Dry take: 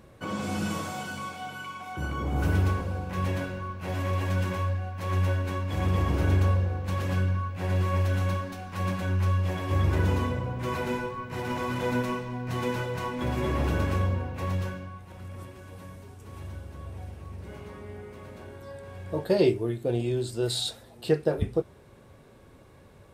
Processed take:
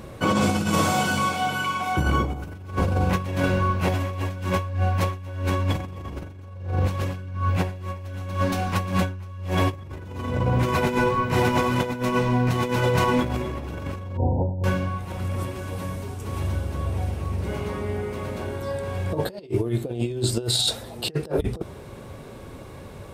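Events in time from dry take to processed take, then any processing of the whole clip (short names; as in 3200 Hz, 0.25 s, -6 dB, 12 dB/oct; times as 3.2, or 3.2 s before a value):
14.17–14.64 brick-wall FIR low-pass 1000 Hz
whole clip: bell 1700 Hz -3 dB 0.37 oct; negative-ratio compressor -32 dBFS, ratio -0.5; gain +8.5 dB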